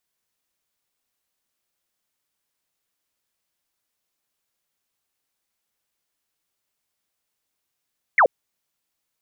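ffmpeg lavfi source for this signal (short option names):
-f lavfi -i "aevalsrc='0.282*clip(t/0.002,0,1)*clip((0.08-t)/0.002,0,1)*sin(2*PI*2300*0.08/log(450/2300)*(exp(log(450/2300)*t/0.08)-1))':d=0.08:s=44100"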